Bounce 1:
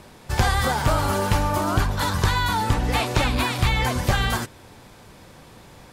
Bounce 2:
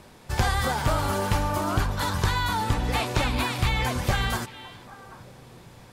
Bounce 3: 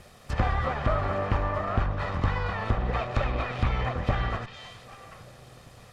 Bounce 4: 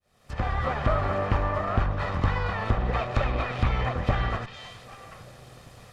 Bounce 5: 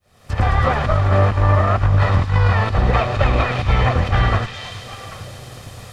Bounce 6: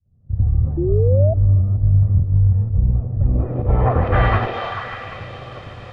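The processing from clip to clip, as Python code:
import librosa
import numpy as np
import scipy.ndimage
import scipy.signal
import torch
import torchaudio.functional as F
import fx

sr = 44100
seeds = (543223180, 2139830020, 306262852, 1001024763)

y1 = fx.echo_stepped(x, sr, ms=394, hz=2800.0, octaves=-1.4, feedback_pct=70, wet_db=-11.5)
y1 = F.gain(torch.from_numpy(y1), -3.5).numpy()
y2 = fx.lower_of_two(y1, sr, delay_ms=1.6)
y2 = fx.env_lowpass_down(y2, sr, base_hz=1900.0, full_db=-25.0)
y3 = fx.fade_in_head(y2, sr, length_s=0.72)
y3 = F.gain(torch.from_numpy(y3), 1.5).numpy()
y4 = fx.peak_eq(y3, sr, hz=96.0, db=10.5, octaves=0.31)
y4 = fx.over_compress(y4, sr, threshold_db=-22.0, ratio=-0.5)
y4 = fx.echo_wet_highpass(y4, sr, ms=109, feedback_pct=83, hz=4500.0, wet_db=-3.5)
y4 = F.gain(torch.from_numpy(y4), 8.5).numpy()
y5 = fx.filter_sweep_lowpass(y4, sr, from_hz=140.0, to_hz=2500.0, start_s=3.12, end_s=4.28, q=1.0)
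y5 = fx.echo_stepped(y5, sr, ms=147, hz=390.0, octaves=0.7, feedback_pct=70, wet_db=0)
y5 = fx.spec_paint(y5, sr, seeds[0], shape='rise', start_s=0.77, length_s=0.57, low_hz=330.0, high_hz=670.0, level_db=-21.0)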